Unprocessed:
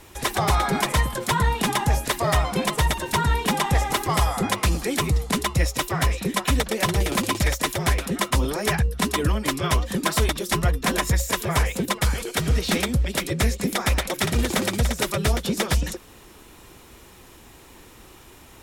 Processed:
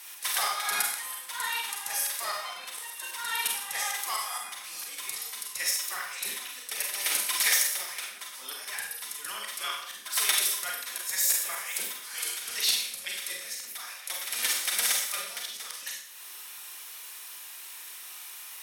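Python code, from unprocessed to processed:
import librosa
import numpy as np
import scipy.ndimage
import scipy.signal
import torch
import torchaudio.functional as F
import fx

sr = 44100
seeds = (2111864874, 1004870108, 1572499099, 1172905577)

y = scipy.signal.sosfilt(scipy.signal.butter(2, 1400.0, 'highpass', fs=sr, output='sos'), x)
y = fx.high_shelf(y, sr, hz=5600.0, db=10.5)
y = fx.notch(y, sr, hz=7200.0, q=7.9)
y = fx.auto_swell(y, sr, attack_ms=313.0)
y = fx.rev_schroeder(y, sr, rt60_s=0.61, comb_ms=31, drr_db=-0.5)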